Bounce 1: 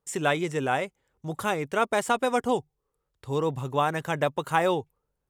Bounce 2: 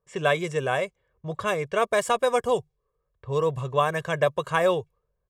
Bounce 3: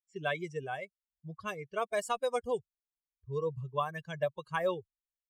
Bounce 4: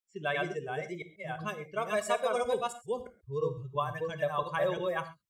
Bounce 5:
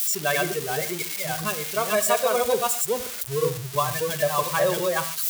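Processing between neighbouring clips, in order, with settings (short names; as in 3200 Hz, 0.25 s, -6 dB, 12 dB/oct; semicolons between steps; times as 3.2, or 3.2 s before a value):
low-pass opened by the level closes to 1600 Hz, open at -22.5 dBFS; comb 1.8 ms, depth 70%
per-bin expansion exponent 2; gain -6.5 dB
reverse delay 0.341 s, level -1 dB; on a send at -9.5 dB: reverb, pre-delay 5 ms
switching spikes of -25.5 dBFS; gain +7.5 dB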